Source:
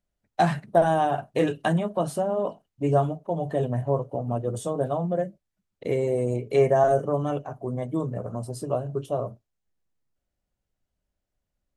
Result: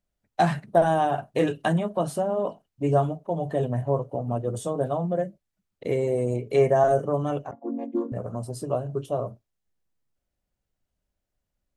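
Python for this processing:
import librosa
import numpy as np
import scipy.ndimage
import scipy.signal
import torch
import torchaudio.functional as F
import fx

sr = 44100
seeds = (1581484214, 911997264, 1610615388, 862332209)

y = fx.chord_vocoder(x, sr, chord='minor triad', root=58, at=(7.51, 8.12))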